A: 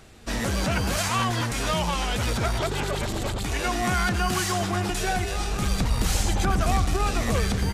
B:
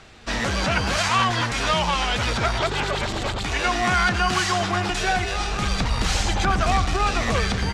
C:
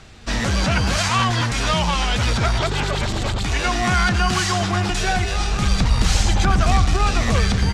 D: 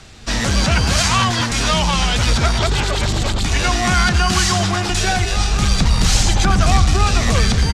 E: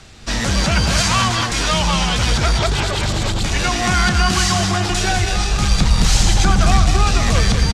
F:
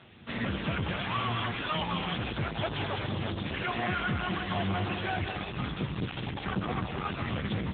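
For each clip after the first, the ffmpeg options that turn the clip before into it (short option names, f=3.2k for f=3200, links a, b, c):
-filter_complex "[0:a]lowpass=5.3k,acrossover=split=680[a][b];[b]acontrast=64[c];[a][c]amix=inputs=2:normalize=0"
-af "bass=f=250:g=7,treble=f=4k:g=4"
-filter_complex "[0:a]acrossover=split=360|3700[a][b][c];[a]aecho=1:1:201:0.631[d];[c]acontrast=21[e];[d][b][e]amix=inputs=3:normalize=0,volume=2dB"
-af "aecho=1:1:195:0.422,volume=-1dB"
-af "asoftclip=type=hard:threshold=-19dB,volume=-5dB" -ar 8000 -c:a libopencore_amrnb -b:a 6700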